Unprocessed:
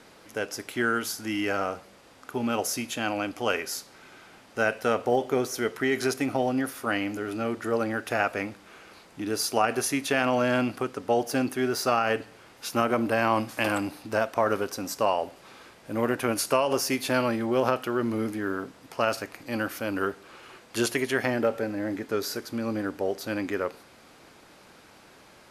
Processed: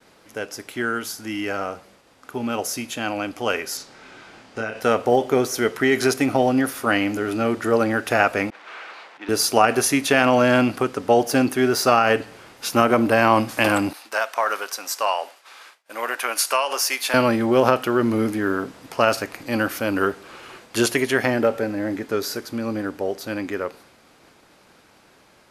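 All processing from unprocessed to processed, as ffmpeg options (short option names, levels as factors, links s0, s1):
-filter_complex "[0:a]asettb=1/sr,asplit=3[s0][s1][s2];[s0]atrim=end=3.774[s3];[s1]atrim=start=3.77:end=4.8,asetpts=PTS-STARTPTS,afade=t=in:d=0.004:c=qsin,afade=t=out:st=1.026:d=0.004:c=qsin,lowpass=7300,acompressor=threshold=0.0355:ratio=5:attack=3.2:release=140:knee=1:detection=peak,asplit=2[s4][s5];[s5]adelay=27,volume=0.596[s6];[s4][s6]amix=inputs=2:normalize=0,atrim=end_sample=45423[s7];[s2]atrim=start=4.796[s8];[s3][s7]acrossfade=d=0.004:c1=hsin:c2=qsin[s9];[s9][s8]acrossfade=d=0.004:c1=qsin:c2=hsin,asettb=1/sr,asplit=3[s10][s11][s12];[s10]atrim=end=8.504[s13];[s11]atrim=start=8.5:end=9.29,asetpts=PTS-STARTPTS,afade=t=in:d=0.004:c=qsin,afade=t=out:st=0.786:d=0.004:c=qsin,aeval=exprs='val(0)+0.5*0.0141*sgn(val(0))':c=same,highpass=730,lowpass=2800,agate=range=0.0224:threshold=0.00891:ratio=3:release=100:detection=peak[s14];[s12]atrim=start=9.286[s15];[s13][s14]acrossfade=d=0.004:c1=hsin:c2=qsin[s16];[s16][s15]acrossfade=d=0.004:c1=qsin:c2=hsin,asettb=1/sr,asplit=3[s17][s18][s19];[s17]atrim=end=13.934[s20];[s18]atrim=start=13.93:end=17.14,asetpts=PTS-STARTPTS,afade=t=in:d=0.004:c=qsin,afade=t=out:st=3.206:d=0.004:c=qsin,highpass=920,agate=range=0.0224:threshold=0.00251:ratio=3:release=100:detection=peak[s21];[s19]atrim=start=17.136[s22];[s20][s21]acrossfade=d=0.004:c1=hsin:c2=qsin[s23];[s23][s22]acrossfade=d=0.004:c1=qsin:c2=hsin,agate=range=0.0224:threshold=0.00316:ratio=3:detection=peak,dynaudnorm=f=530:g=17:m=2.82,volume=1.12"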